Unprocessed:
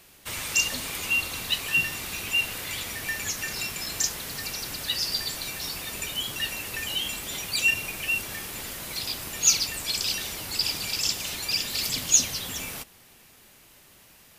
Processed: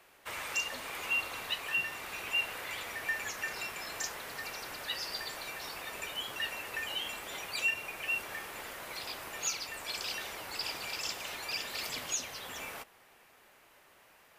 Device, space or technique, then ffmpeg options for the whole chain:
DJ mixer with the lows and highs turned down: -filter_complex "[0:a]acrossover=split=410 2300:gain=0.178 1 0.224[a][b][c];[a][b][c]amix=inputs=3:normalize=0,alimiter=limit=-22dB:level=0:latency=1:release=473"

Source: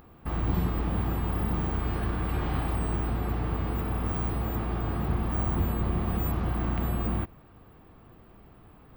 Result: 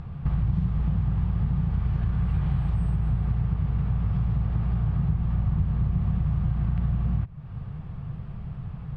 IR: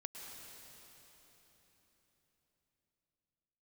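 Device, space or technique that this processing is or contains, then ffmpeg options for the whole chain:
jukebox: -af "lowpass=5.4k,lowshelf=f=210:t=q:w=3:g=11.5,acompressor=threshold=-30dB:ratio=4,volume=5.5dB"

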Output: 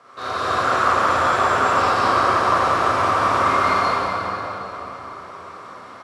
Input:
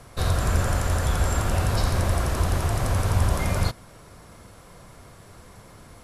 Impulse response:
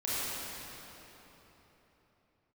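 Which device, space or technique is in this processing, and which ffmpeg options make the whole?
station announcement: -filter_complex "[0:a]highpass=350,lowpass=4.6k,equalizer=f=1.2k:t=o:w=0.53:g=12,aecho=1:1:145.8|180.8:0.355|0.891[a];[1:a]atrim=start_sample=2205[b];[a][b]afir=irnorm=-1:irlink=0,volume=-2.5dB"

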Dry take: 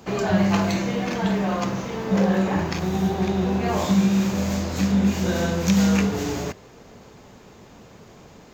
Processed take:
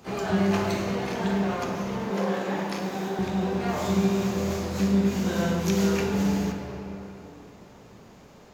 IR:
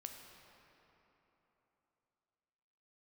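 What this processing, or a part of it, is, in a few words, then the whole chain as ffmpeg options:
shimmer-style reverb: -filter_complex "[0:a]asplit=2[a][b];[b]asetrate=88200,aresample=44100,atempo=0.5,volume=-11dB[c];[a][c]amix=inputs=2:normalize=0[d];[1:a]atrim=start_sample=2205[e];[d][e]afir=irnorm=-1:irlink=0,asettb=1/sr,asplit=3[f][g][h];[f]atrim=end=2.104[i];[g]atrim=start=2.1:end=3.19,asetpts=PTS-STARTPTS,afade=t=in:d=0.004:c=qsin,afade=t=out:st=1.086:d=0.004:c=qsin,highpass=240[j];[h]atrim=start=3.186[k];[i][j]acrossfade=d=0.004:c1=hsin:c2=qsin[l];[l][k]acrossfade=d=0.004:c1=qsin:c2=hsin"

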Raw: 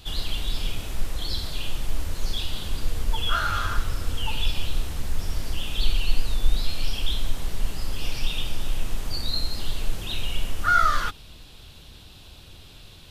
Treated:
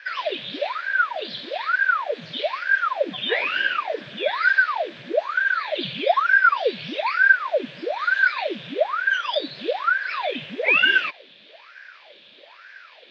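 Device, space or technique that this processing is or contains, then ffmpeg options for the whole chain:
voice changer toy: -af "aeval=exprs='val(0)*sin(2*PI*860*n/s+860*0.85/1.1*sin(2*PI*1.1*n/s))':c=same,highpass=500,equalizer=f=580:t=q:w=4:g=8,equalizer=f=830:t=q:w=4:g=-7,equalizer=f=1.2k:t=q:w=4:g=-5,equalizer=f=1.7k:t=q:w=4:g=9,equalizer=f=2.4k:t=q:w=4:g=7,equalizer=f=3.5k:t=q:w=4:g=7,lowpass=f=4.1k:w=0.5412,lowpass=f=4.1k:w=1.3066"

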